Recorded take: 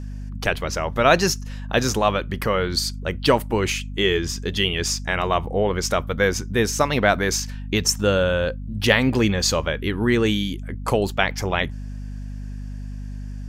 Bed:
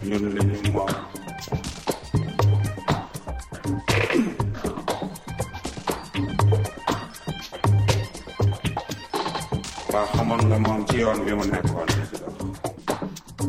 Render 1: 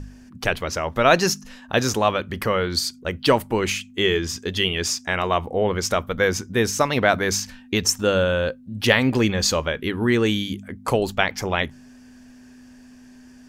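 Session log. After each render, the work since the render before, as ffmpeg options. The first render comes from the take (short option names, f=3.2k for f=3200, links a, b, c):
-af "bandreject=f=50:t=h:w=4,bandreject=f=100:t=h:w=4,bandreject=f=150:t=h:w=4,bandreject=f=200:t=h:w=4"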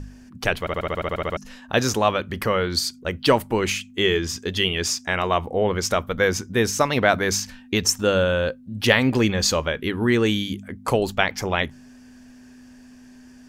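-filter_complex "[0:a]asplit=12[a][b][c][d][e][f][g][h][i][j][k][l];[a]atrim=end=0.672[m];[b]atrim=start=0.598:end=0.672[n];[c]atrim=start=0.598:end=0.672[o];[d]atrim=start=0.598:end=0.672[p];[e]atrim=start=0.598:end=0.672[q];[f]atrim=start=0.598:end=0.672[r];[g]atrim=start=0.598:end=0.672[s];[h]atrim=start=0.598:end=0.672[t];[i]atrim=start=0.598:end=0.672[u];[j]atrim=start=0.598:end=0.672[v];[k]atrim=start=0.598:end=0.672[w];[l]atrim=start=1.368[x];[m][n]acrossfade=d=0.004:c1=hsin:c2=hsin[y];[y][o]acrossfade=d=0.004:c1=hsin:c2=hsin[z];[z][p]acrossfade=d=0.004:c1=hsin:c2=hsin[aa];[aa][q]acrossfade=d=0.004:c1=hsin:c2=hsin[ab];[ab][r]acrossfade=d=0.004:c1=hsin:c2=hsin[ac];[ac][s]acrossfade=d=0.004:c1=hsin:c2=hsin[ad];[ad][t]acrossfade=d=0.004:c1=hsin:c2=hsin[ae];[ae][u]acrossfade=d=0.004:c1=hsin:c2=hsin[af];[af][v]acrossfade=d=0.004:c1=hsin:c2=hsin[ag];[ag][w]acrossfade=d=0.004:c1=hsin:c2=hsin[ah];[ah][x]acrossfade=d=0.004:c1=hsin:c2=hsin"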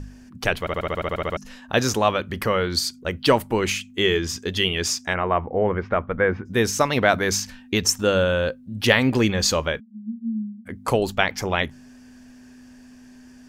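-filter_complex "[0:a]asplit=3[a][b][c];[a]afade=t=out:st=5.13:d=0.02[d];[b]lowpass=f=2.1k:w=0.5412,lowpass=f=2.1k:w=1.3066,afade=t=in:st=5.13:d=0.02,afade=t=out:st=6.45:d=0.02[e];[c]afade=t=in:st=6.45:d=0.02[f];[d][e][f]amix=inputs=3:normalize=0,asplit=3[g][h][i];[g]afade=t=out:st=9.79:d=0.02[j];[h]asuperpass=centerf=220:order=20:qfactor=7.5,afade=t=in:st=9.79:d=0.02,afade=t=out:st=10.65:d=0.02[k];[i]afade=t=in:st=10.65:d=0.02[l];[j][k][l]amix=inputs=3:normalize=0"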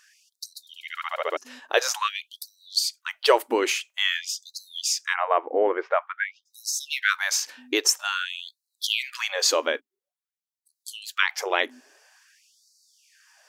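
-af "afftfilt=real='re*gte(b*sr/1024,250*pow(3900/250,0.5+0.5*sin(2*PI*0.49*pts/sr)))':imag='im*gte(b*sr/1024,250*pow(3900/250,0.5+0.5*sin(2*PI*0.49*pts/sr)))':win_size=1024:overlap=0.75"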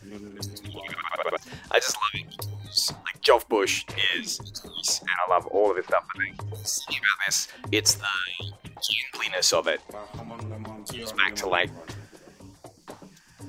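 -filter_complex "[1:a]volume=-17dB[a];[0:a][a]amix=inputs=2:normalize=0"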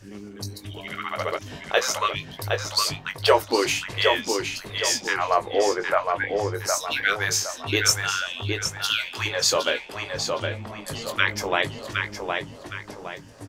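-filter_complex "[0:a]asplit=2[a][b];[b]adelay=20,volume=-8dB[c];[a][c]amix=inputs=2:normalize=0,asplit=2[d][e];[e]adelay=764,lowpass=f=4.4k:p=1,volume=-4dB,asplit=2[f][g];[g]adelay=764,lowpass=f=4.4k:p=1,volume=0.39,asplit=2[h][i];[i]adelay=764,lowpass=f=4.4k:p=1,volume=0.39,asplit=2[j][k];[k]adelay=764,lowpass=f=4.4k:p=1,volume=0.39,asplit=2[l][m];[m]adelay=764,lowpass=f=4.4k:p=1,volume=0.39[n];[f][h][j][l][n]amix=inputs=5:normalize=0[o];[d][o]amix=inputs=2:normalize=0"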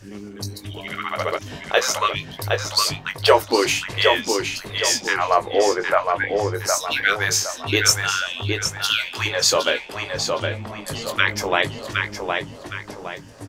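-af "volume=3.5dB,alimiter=limit=-2dB:level=0:latency=1"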